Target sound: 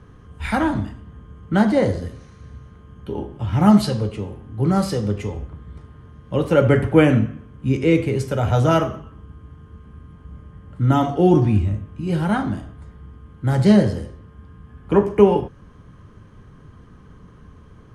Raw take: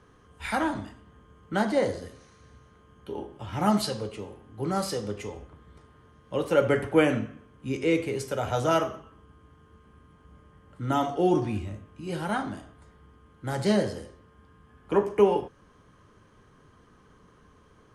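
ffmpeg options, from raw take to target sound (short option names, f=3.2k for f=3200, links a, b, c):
-af "bass=f=250:g=11,treble=f=4k:g=-4,volume=5dB"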